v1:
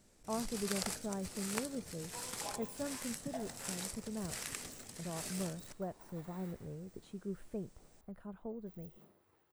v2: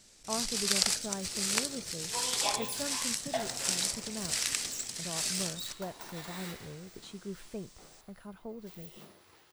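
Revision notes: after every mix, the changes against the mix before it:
second sound +8.5 dB; master: add bell 4700 Hz +15 dB 2.7 oct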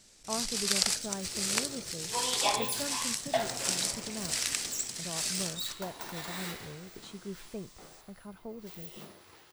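second sound +4.5 dB

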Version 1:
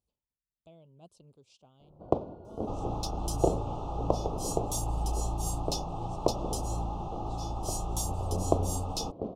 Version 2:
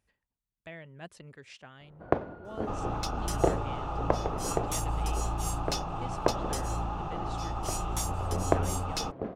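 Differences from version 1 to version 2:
speech +8.0 dB; master: remove Butterworth band-stop 1800 Hz, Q 0.73

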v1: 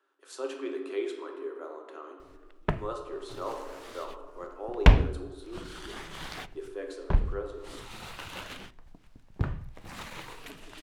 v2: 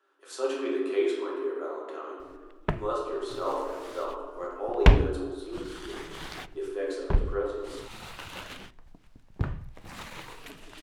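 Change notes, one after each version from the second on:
speech: send +8.5 dB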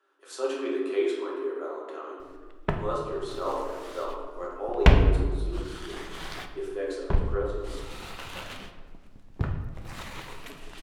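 background: send on

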